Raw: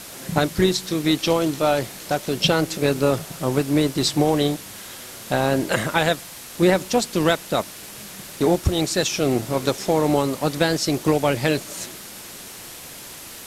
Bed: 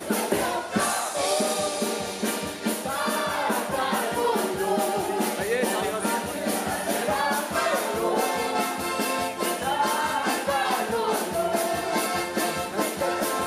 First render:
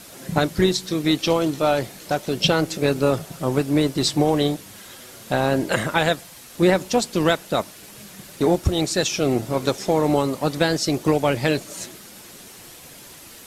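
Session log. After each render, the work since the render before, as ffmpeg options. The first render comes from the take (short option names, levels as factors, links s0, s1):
-af "afftdn=nr=6:nf=-39"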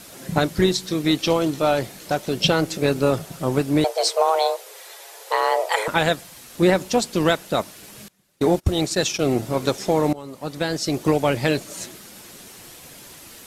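-filter_complex "[0:a]asettb=1/sr,asplit=3[s0][s1][s2];[s0]atrim=end=3.844[s3];[s1]atrim=start=3.84:end=5.88,asetpts=PTS-STARTPTS,afade=t=in:d=0.004:c=qsin,afade=t=out:st=2.036:d=0.004:c=qsin,afreqshift=320[s4];[s2]atrim=start=5.876[s5];[s3][s4]acrossfade=d=0.004:c1=hsin:c2=qsin[s6];[s6][s5]acrossfade=d=0.004:c1=qsin:c2=hsin,asettb=1/sr,asplit=3[s7][s8][s9];[s7]atrim=end=8.084[s10];[s8]atrim=start=8.08:end=9.35,asetpts=PTS-STARTPTS,afade=t=in:d=0.004:c=qsin,afade=t=out:st=1.266:d=0.004:c=qsin,agate=range=0.0631:threshold=0.0398:ratio=16:release=100:detection=peak[s11];[s9]atrim=start=9.346[s12];[s10][s11]acrossfade=d=0.004:c1=hsin:c2=qsin[s13];[s13][s12]acrossfade=d=0.004:c1=qsin:c2=hsin,asplit=2[s14][s15];[s14]atrim=end=10.13,asetpts=PTS-STARTPTS,afade=t=out:st=10.126:d=0.004:c=hsin:silence=0.0841395[s16];[s15]atrim=start=10.13,asetpts=PTS-STARTPTS,afade=t=in:d=0.94:silence=0.0841395[s17];[s16][s17]concat=n=2:v=0:a=1"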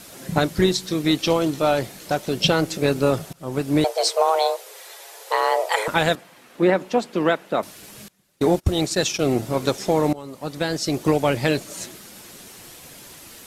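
-filter_complex "[0:a]asettb=1/sr,asplit=3[s0][s1][s2];[s0]atrim=end=6.154[s3];[s1]atrim=start=6.15:end=7.63,asetpts=PTS-STARTPTS,afade=t=in:d=0.004:c=qsin,afade=t=out:st=1.476:d=0.004:c=qsin,acrossover=split=170 2900:gain=0.126 1 0.2[s4][s5][s6];[s4][s5][s6]amix=inputs=3:normalize=0[s7];[s2]atrim=start=7.626[s8];[s3][s7]acrossfade=d=0.004:c1=hsin:c2=qsin[s9];[s9][s8]acrossfade=d=0.004:c1=qsin:c2=hsin,asplit=2[s10][s11];[s10]atrim=end=3.33,asetpts=PTS-STARTPTS,afade=t=out:st=3.326:d=0.004:c=hsin:silence=0.0944061[s12];[s11]atrim=start=3.33,asetpts=PTS-STARTPTS,afade=t=in:d=0.41:silence=0.0944061[s13];[s12][s13]concat=n=2:v=0:a=1"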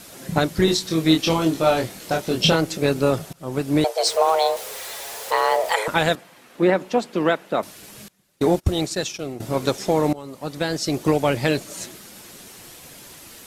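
-filter_complex "[0:a]asettb=1/sr,asplit=3[s0][s1][s2];[s0]atrim=end=0.654[s3];[s1]atrim=start=0.65:end=2.56,asetpts=PTS-STARTPTS,afade=t=in:d=0.004:c=qsin,afade=t=out:st=1.906:d=0.004:c=qsin,asplit=2[s4][s5];[s5]adelay=25,volume=0.708[s6];[s4][s6]amix=inputs=2:normalize=0,atrim=end_sample=84231[s7];[s2]atrim=start=2.556[s8];[s3][s7]acrossfade=d=0.004:c1=hsin:c2=qsin[s9];[s9][s8]acrossfade=d=0.004:c1=qsin:c2=hsin,asettb=1/sr,asplit=3[s10][s11][s12];[s10]atrim=end=4.064[s13];[s11]atrim=start=4.06:end=5.74,asetpts=PTS-STARTPTS,afade=t=in:d=0.004:c=qsin,afade=t=out:st=1.676:d=0.004:c=qsin,aeval=exprs='val(0)+0.5*0.0266*sgn(val(0))':c=same[s14];[s12]atrim=start=5.736[s15];[s13][s14]acrossfade=d=0.004:c1=hsin:c2=qsin[s16];[s16][s15]acrossfade=d=0.004:c1=qsin:c2=hsin,asplit=2[s17][s18];[s17]atrim=end=9.4,asetpts=PTS-STARTPTS,afade=t=out:st=8.67:d=0.73:silence=0.16788[s19];[s18]atrim=start=9.4,asetpts=PTS-STARTPTS,afade=t=in:d=0.004:c=hsin:silence=0.16788[s20];[s19][s20]concat=n=2:v=0:a=1"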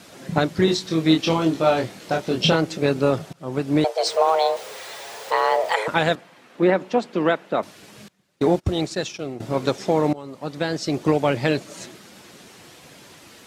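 -af "highpass=86,equalizer=f=13000:w=0.54:g=-13.5"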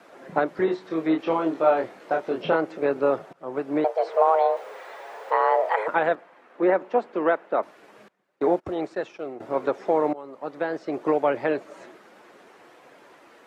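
-filter_complex "[0:a]acrossover=split=3000[s0][s1];[s1]acompressor=threshold=0.0112:ratio=4:attack=1:release=60[s2];[s0][s2]amix=inputs=2:normalize=0,acrossover=split=310 2000:gain=0.0891 1 0.126[s3][s4][s5];[s3][s4][s5]amix=inputs=3:normalize=0"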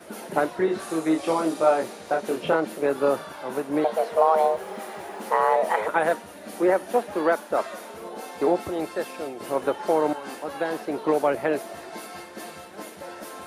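-filter_complex "[1:a]volume=0.224[s0];[0:a][s0]amix=inputs=2:normalize=0"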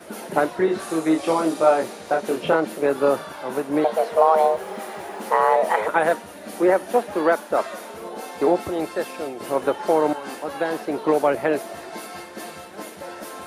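-af "volume=1.41"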